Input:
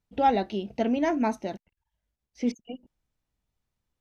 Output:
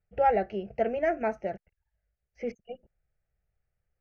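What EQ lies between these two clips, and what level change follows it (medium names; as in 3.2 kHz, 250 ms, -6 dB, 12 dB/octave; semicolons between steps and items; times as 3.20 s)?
distance through air 240 m; static phaser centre 1 kHz, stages 6; +3.5 dB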